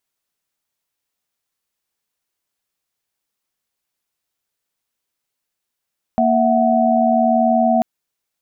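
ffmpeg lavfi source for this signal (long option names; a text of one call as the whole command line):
ffmpeg -f lavfi -i "aevalsrc='0.15*(sin(2*PI*233.08*t)+sin(2*PI*659.26*t)+sin(2*PI*739.99*t))':duration=1.64:sample_rate=44100" out.wav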